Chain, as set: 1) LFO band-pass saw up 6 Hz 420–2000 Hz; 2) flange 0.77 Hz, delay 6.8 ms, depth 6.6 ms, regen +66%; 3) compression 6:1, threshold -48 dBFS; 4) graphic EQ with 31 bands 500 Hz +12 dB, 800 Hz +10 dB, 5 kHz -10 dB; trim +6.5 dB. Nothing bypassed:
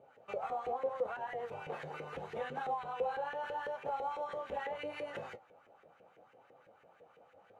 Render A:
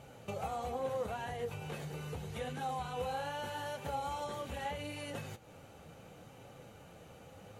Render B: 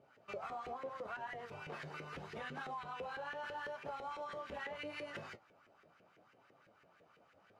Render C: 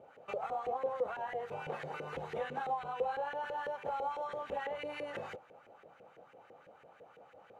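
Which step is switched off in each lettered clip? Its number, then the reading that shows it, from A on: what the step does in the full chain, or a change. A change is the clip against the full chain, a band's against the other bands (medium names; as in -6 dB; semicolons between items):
1, 125 Hz band +13.0 dB; 4, 500 Hz band -8.0 dB; 2, momentary loudness spread change +15 LU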